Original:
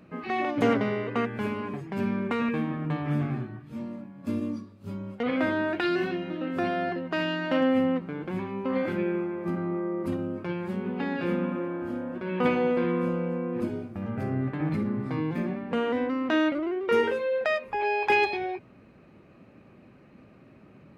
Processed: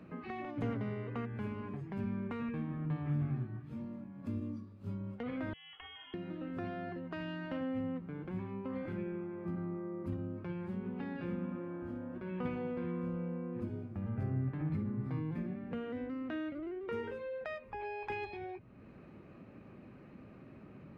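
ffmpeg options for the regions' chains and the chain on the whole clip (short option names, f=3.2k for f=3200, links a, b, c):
-filter_complex "[0:a]asettb=1/sr,asplit=3[a][b][c];[a]atrim=end=5.534[d];[b]atrim=start=5.53:end=6.14,asetpts=PTS-STARTPTS,afade=t=in:d=0.004:c=qsin,afade=t=out:st=0.606:d=0.004:c=qsin,highpass=750,equalizer=f=1.4k:t=o:w=2.4:g=-14.5,lowpass=f=3.1k:t=q:w=0.5098,lowpass=f=3.1k:t=q:w=0.6013,lowpass=f=3.1k:t=q:w=0.9,lowpass=f=3.1k:t=q:w=2.563,afreqshift=-3600[e];[c]atrim=start=6.136[f];[d][e]acrossfade=d=0.004:c1=hsin:c2=qsin[g];[g][f]acrossfade=d=0.004:c1=qsin:c2=hsin,asettb=1/sr,asplit=3[h][i][j];[h]atrim=end=15.404[k];[i]atrim=start=15.4:end=16.86,asetpts=PTS-STARTPTS,afade=t=in:d=0.004:c=qsin,afade=t=out:st=1.456:d=0.004:c=qsin,acrossover=split=4300[l][m];[m]acompressor=threshold=-57dB:ratio=4:attack=1:release=60[n];[l][n]amix=inputs=2:normalize=0,equalizer=f=970:t=o:w=0.38:g=-8.5[o];[j]atrim=start=16.856[p];[k][o]acrossfade=d=0.004:c1=hsin:c2=qsin[q];[q][p]acrossfade=d=0.004:c1=qsin:c2=hsin,equalizer=f=640:w=1.5:g=-2,acrossover=split=130[r][s];[s]acompressor=threshold=-52dB:ratio=2[t];[r][t]amix=inputs=2:normalize=0,highshelf=f=3.3k:g=-9.5,volume=1dB"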